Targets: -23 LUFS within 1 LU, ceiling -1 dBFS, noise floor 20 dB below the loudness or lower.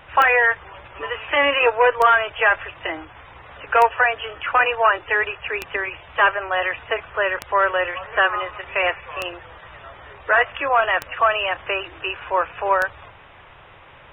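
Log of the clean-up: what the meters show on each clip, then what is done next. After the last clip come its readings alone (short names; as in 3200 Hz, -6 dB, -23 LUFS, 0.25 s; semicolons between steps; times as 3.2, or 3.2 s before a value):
clicks 8; loudness -20.0 LUFS; peak -5.0 dBFS; loudness target -23.0 LUFS
-> de-click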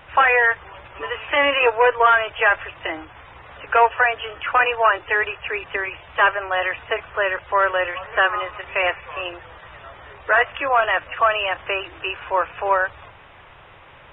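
clicks 0; loudness -20.0 LUFS; peak -5.0 dBFS; loudness target -23.0 LUFS
-> gain -3 dB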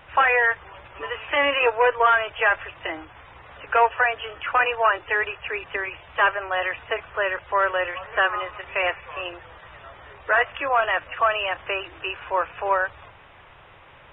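loudness -23.0 LUFS; peak -8.0 dBFS; noise floor -49 dBFS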